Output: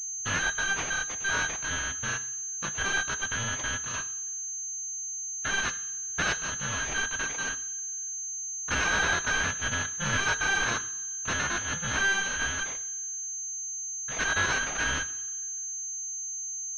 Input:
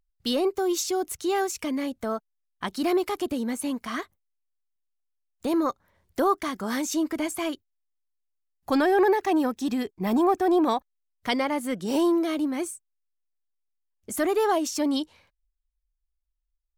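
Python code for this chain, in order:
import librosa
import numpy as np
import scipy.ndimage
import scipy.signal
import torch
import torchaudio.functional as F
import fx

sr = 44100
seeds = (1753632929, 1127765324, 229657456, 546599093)

y = fx.bit_reversed(x, sr, seeds[0], block=128)
y = fx.rev_double_slope(y, sr, seeds[1], early_s=0.6, late_s=2.0, knee_db=-17, drr_db=11.0)
y = fx.pwm(y, sr, carrier_hz=6300.0)
y = y * librosa.db_to_amplitude(-1.0)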